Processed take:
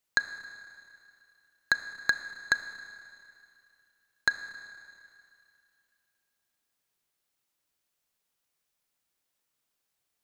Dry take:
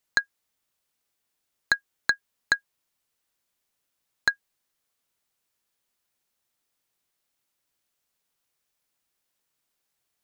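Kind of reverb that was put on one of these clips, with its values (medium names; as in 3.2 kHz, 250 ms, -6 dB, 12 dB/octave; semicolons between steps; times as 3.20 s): Schroeder reverb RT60 2.5 s, combs from 26 ms, DRR 10 dB; trim -2.5 dB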